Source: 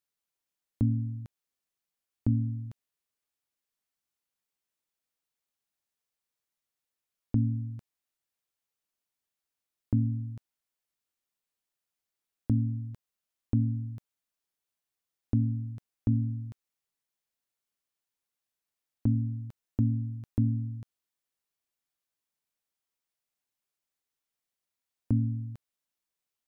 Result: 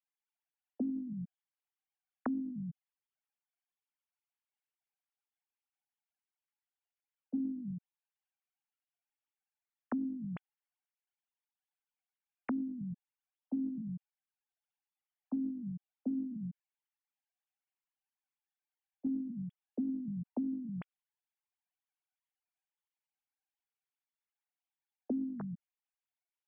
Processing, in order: formants replaced by sine waves; gain riding within 3 dB; peak limiter -23 dBFS, peak gain reduction 7.5 dB; compression, threshold -37 dBFS, peak gain reduction 10.5 dB; trim +4 dB

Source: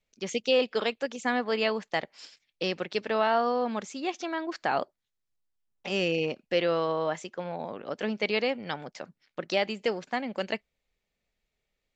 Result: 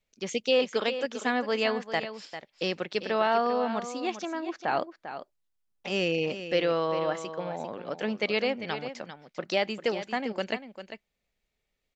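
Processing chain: 4.25–4.68 s: low-pass 1.2 kHz 6 dB/octave; on a send: delay 397 ms -11 dB

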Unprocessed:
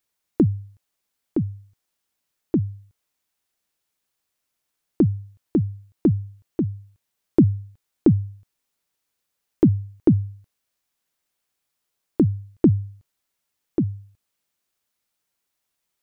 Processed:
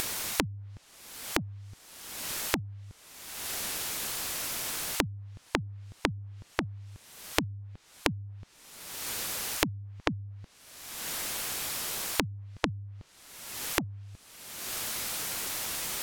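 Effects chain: low-pass that closes with the level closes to 350 Hz, closed at -16.5 dBFS; upward compressor, threshold -28 dBFS; spectrum-flattening compressor 4:1; trim +4 dB

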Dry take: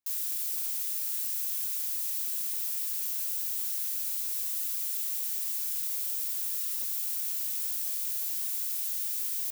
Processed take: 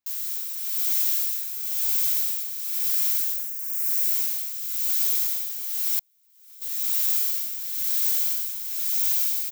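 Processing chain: 3.11–3.90 s: static phaser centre 930 Hz, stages 6; 8.68–9.08 s: high-pass 300 Hz; gated-style reverb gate 290 ms rising, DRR -6.5 dB; tremolo 0.99 Hz, depth 70%; delay 121 ms -9.5 dB; 5.99–6.62 s: compressor with a negative ratio -48 dBFS, ratio -0.5; peaking EQ 10 kHz -8 dB 0.41 oct; trim +3 dB

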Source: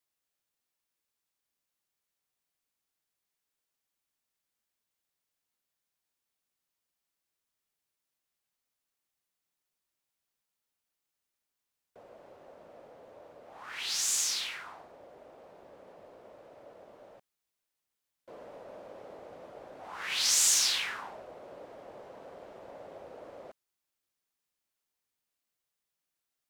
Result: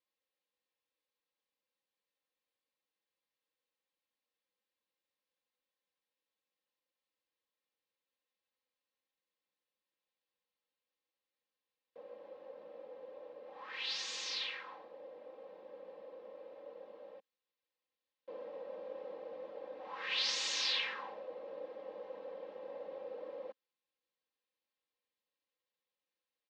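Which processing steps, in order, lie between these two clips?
cabinet simulation 230–3900 Hz, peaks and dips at 260 Hz -9 dB, 500 Hz +5 dB, 710 Hz -9 dB, 1.4 kHz -10 dB, 2.2 kHz -4 dB, 3.1 kHz -3 dB; comb 3.8 ms, depth 78%; trim -1 dB

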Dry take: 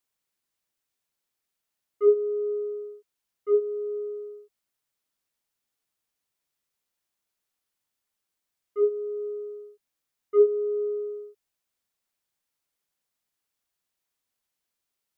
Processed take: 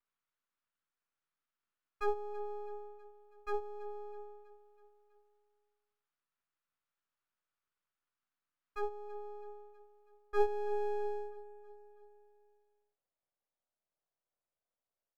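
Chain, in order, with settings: band-pass sweep 1.3 kHz -> 610 Hz, 9.81–11.18 s; half-wave rectifier; feedback delay 325 ms, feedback 57%, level -19 dB; trim +6 dB

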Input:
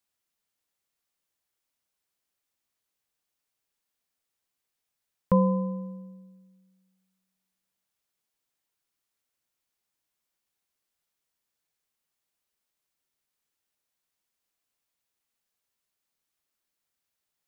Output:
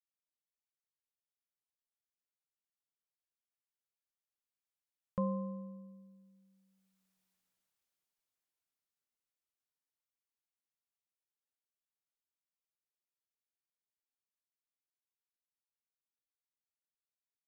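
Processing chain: Doppler pass-by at 7.17 s, 9 m/s, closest 4.1 m

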